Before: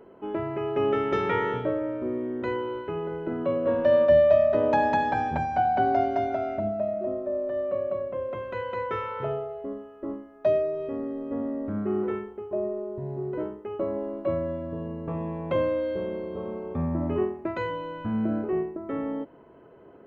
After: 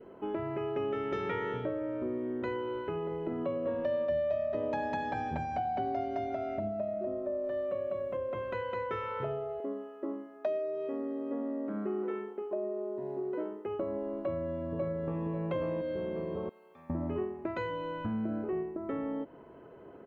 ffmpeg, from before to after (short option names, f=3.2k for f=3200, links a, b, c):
-filter_complex "[0:a]asettb=1/sr,asplit=3[a][b][c];[a]atrim=end=2.964[d];[b]atrim=start=2.96:end=6.8,asetpts=PTS-STARTPTS,afade=t=in:d=0.004:c=qsin,afade=t=out:st=3.836:d=0.004:c=qsin,bandreject=f=1.5k:w=12[e];[c]atrim=start=6.796[f];[d][e]acrossfade=d=0.004:c1=hsin:c2=qsin[g];[g][f]acrossfade=d=0.004:c1=qsin:c2=hsin,asettb=1/sr,asplit=3[h][i][j];[h]atrim=end=7.444[k];[i]atrim=start=7.44:end=8.17,asetpts=PTS-STARTPTS,afade=t=in:d=0.004:c=qsin,afade=t=out:st=0.726:d=0.004:c=qsin,highshelf=f=2.5k:g=8[l];[j]atrim=start=8.166[m];[k][l]acrossfade=d=0.004:c1=hsin:c2=qsin[n];[n][m]acrossfade=d=0.004:c1=qsin:c2=hsin,asettb=1/sr,asplit=3[o][p][q];[o]atrim=end=9.604[r];[p]atrim=start=9.6:end=13.66,asetpts=PTS-STARTPTS,afade=t=in:d=0.004:c=qsin,afade=t=out:st=4.056:d=0.004:c=qsin,highpass=f=220:w=0.5412,highpass=f=220:w=1.3066[s];[q]atrim=start=13.656[t];[r][s]acrossfade=d=0.004:c1=hsin:c2=qsin[u];[u][t]acrossfade=d=0.004:c1=qsin:c2=hsin,asplit=2[v][w];[w]afade=t=in:st=14.25:d=0.01,afade=t=out:st=15.27:d=0.01,aecho=0:1:540|1080|1620|2160:1|0.3|0.09|0.027[x];[v][x]amix=inputs=2:normalize=0,asettb=1/sr,asplit=3[y][z][aa];[y]atrim=end=16.494[ab];[z]atrim=start=16.49:end=16.9,asetpts=PTS-STARTPTS,afade=t=in:d=0.004:c=qsin,afade=t=out:st=0.406:d=0.004:c=qsin,aderivative[ac];[aa]atrim=start=16.896[ad];[ab][ac]acrossfade=d=0.004:c1=hsin:c2=qsin[ae];[ae][ad]acrossfade=d=0.004:c1=qsin:c2=hsin,adynamicequalizer=threshold=0.0158:dfrequency=960:dqfactor=1.7:tfrequency=960:tqfactor=1.7:attack=5:release=100:ratio=0.375:range=2:mode=cutabove:tftype=bell,acompressor=threshold=-33dB:ratio=3"